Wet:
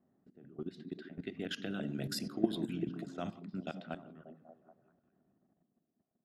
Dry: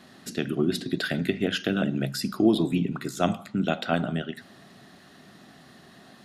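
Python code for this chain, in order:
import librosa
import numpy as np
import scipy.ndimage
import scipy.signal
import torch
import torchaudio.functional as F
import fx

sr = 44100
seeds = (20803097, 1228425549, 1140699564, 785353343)

y = fx.doppler_pass(x, sr, speed_mps=5, closest_m=2.4, pass_at_s=2.27)
y = fx.level_steps(y, sr, step_db=17)
y = fx.echo_stepped(y, sr, ms=195, hz=200.0, octaves=0.7, feedback_pct=70, wet_db=-5.5)
y = fx.env_lowpass(y, sr, base_hz=610.0, full_db=-31.0)
y = y * librosa.db_to_amplitude(-4.0)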